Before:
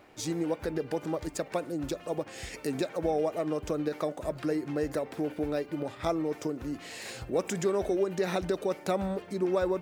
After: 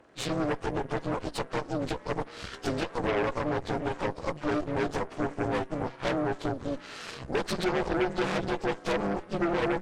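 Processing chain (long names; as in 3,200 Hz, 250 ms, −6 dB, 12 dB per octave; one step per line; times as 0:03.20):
partials spread apart or drawn together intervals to 84%
harmonic generator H 8 −10 dB, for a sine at −18.5 dBFS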